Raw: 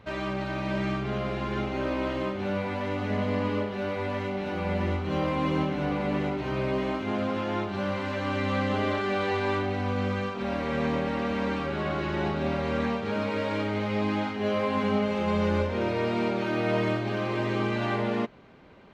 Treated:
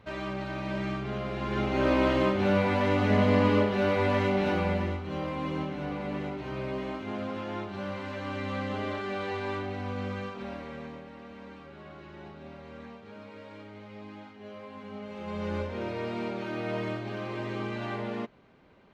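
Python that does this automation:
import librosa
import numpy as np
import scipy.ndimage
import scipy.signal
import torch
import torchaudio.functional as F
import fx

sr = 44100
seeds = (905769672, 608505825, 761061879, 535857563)

y = fx.gain(x, sr, db=fx.line((1.3, -3.5), (1.9, 5.0), (4.5, 5.0), (5.01, -6.0), (10.35, -6.0), (11.06, -17.5), (14.85, -17.5), (15.54, -6.5)))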